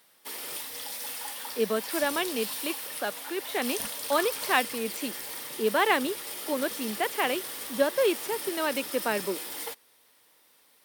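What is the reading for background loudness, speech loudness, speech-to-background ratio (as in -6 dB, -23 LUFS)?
-34.5 LUFS, -29.5 LUFS, 5.0 dB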